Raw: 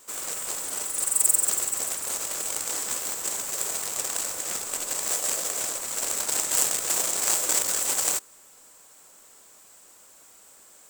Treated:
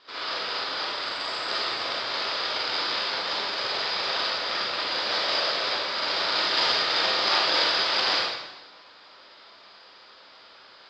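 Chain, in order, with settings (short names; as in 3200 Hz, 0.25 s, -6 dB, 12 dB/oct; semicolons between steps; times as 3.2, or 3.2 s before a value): rippled Chebyshev low-pass 5000 Hz, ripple 3 dB; tilt +2.5 dB/oct; reverb RT60 1.1 s, pre-delay 33 ms, DRR -6.5 dB; gain +2.5 dB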